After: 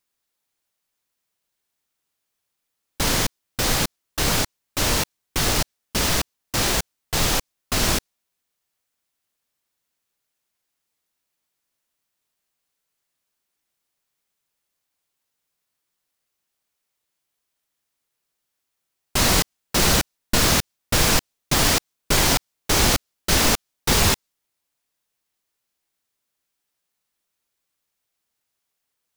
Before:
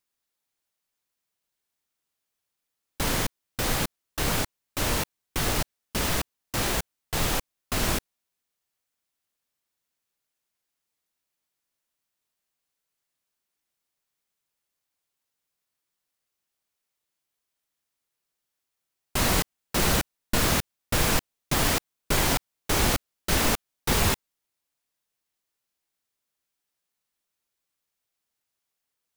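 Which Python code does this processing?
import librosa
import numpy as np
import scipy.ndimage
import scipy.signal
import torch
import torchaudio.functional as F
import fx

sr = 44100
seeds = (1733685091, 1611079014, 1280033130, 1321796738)

y = fx.dynamic_eq(x, sr, hz=5300.0, q=0.94, threshold_db=-43.0, ratio=4.0, max_db=5)
y = F.gain(torch.from_numpy(y), 4.0).numpy()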